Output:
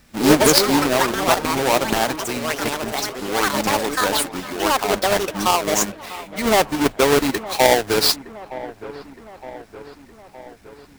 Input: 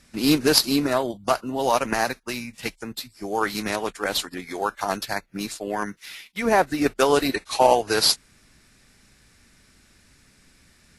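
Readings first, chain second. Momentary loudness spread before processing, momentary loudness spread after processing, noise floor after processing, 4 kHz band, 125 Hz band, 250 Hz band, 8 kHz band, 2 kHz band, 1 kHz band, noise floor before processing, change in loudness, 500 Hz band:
14 LU, 18 LU, -48 dBFS, +4.0 dB, +6.0 dB, +4.0 dB, +7.0 dB, +5.5 dB, +4.5 dB, -58 dBFS, +4.5 dB, +4.5 dB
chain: square wave that keeps the level; feedback echo behind a low-pass 915 ms, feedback 59%, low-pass 1.8 kHz, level -16 dB; ever faster or slower copies 87 ms, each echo +6 st, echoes 2; trim -1.5 dB

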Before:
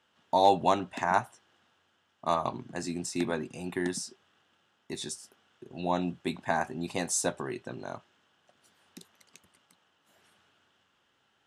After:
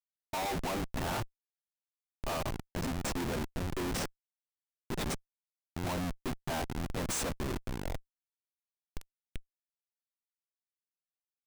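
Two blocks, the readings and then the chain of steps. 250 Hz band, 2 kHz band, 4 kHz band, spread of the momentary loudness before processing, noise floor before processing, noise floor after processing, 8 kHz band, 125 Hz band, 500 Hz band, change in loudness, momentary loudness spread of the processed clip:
-3.5 dB, -4.0 dB, -1.5 dB, 16 LU, -72 dBFS, under -85 dBFS, -5.0 dB, +2.5 dB, -7.5 dB, -5.5 dB, 17 LU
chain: Schmitt trigger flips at -34 dBFS

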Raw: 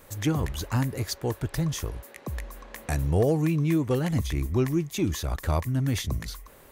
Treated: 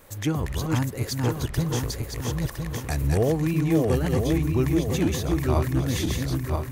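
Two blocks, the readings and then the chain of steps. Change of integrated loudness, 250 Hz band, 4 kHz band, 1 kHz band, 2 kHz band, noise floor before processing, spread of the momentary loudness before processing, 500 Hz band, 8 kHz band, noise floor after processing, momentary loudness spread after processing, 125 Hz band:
+2.5 dB, +3.0 dB, +2.5 dB, +2.5 dB, +2.5 dB, -51 dBFS, 14 LU, +3.0 dB, +2.5 dB, -36 dBFS, 7 LU, +2.5 dB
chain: backward echo that repeats 505 ms, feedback 62%, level -2.5 dB; crackle 22 per s -41 dBFS

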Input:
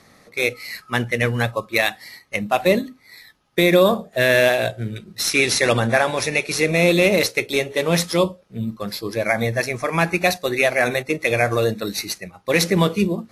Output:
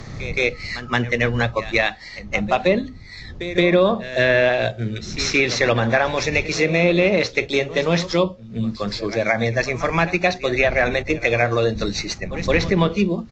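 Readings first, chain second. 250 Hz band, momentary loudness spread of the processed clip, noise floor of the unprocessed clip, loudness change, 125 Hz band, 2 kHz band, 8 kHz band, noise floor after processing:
+0.5 dB, 9 LU, -53 dBFS, 0.0 dB, +1.0 dB, 0.0 dB, -6.0 dB, -38 dBFS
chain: wind noise 100 Hz -35 dBFS; resampled via 16 kHz; reverse echo 172 ms -17 dB; low-pass that closes with the level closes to 2.9 kHz, closed at -11.5 dBFS; three bands compressed up and down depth 40%

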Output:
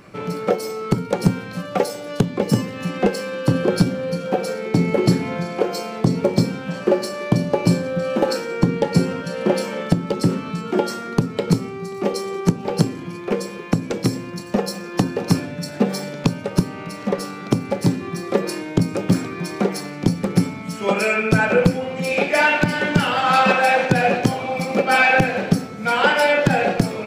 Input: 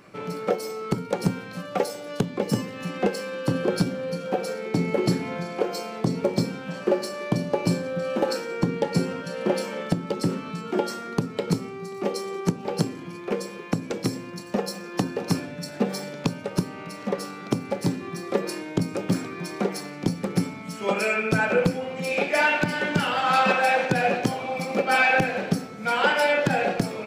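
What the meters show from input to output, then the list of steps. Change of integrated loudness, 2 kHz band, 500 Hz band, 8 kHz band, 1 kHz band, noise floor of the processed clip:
+5.5 dB, +4.5 dB, +5.0 dB, +4.5 dB, +4.5 dB, -33 dBFS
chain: bass shelf 98 Hz +10.5 dB; trim +4.5 dB

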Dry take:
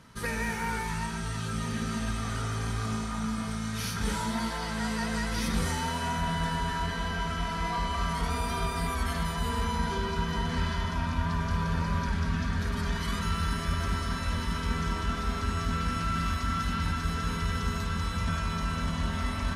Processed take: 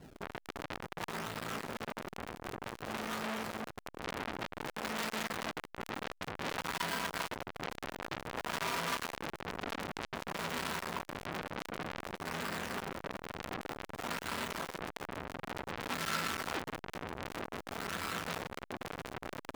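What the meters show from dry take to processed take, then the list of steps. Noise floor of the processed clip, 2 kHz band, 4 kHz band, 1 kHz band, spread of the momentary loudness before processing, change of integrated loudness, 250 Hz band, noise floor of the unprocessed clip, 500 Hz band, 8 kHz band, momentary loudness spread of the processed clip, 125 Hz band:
-68 dBFS, -5.0 dB, -5.5 dB, -7.5 dB, 3 LU, -8.5 dB, -11.5 dB, -34 dBFS, -3.0 dB, -7.0 dB, 8 LU, -18.5 dB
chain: high-pass 210 Hz 12 dB/octave; decimation with a swept rate 35×, swing 160% 0.54 Hz; flange 1.4 Hz, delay 0 ms, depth 6.9 ms, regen -73%; transformer saturation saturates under 3.7 kHz; trim +8.5 dB

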